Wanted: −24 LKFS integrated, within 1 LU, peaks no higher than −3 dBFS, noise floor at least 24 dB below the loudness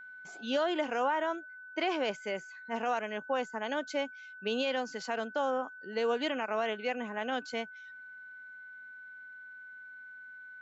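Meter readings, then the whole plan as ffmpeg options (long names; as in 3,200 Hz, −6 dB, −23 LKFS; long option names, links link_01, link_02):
interfering tone 1,500 Hz; level of the tone −46 dBFS; integrated loudness −34.0 LKFS; sample peak −20.5 dBFS; target loudness −24.0 LKFS
→ -af "bandreject=frequency=1500:width=30"
-af "volume=10dB"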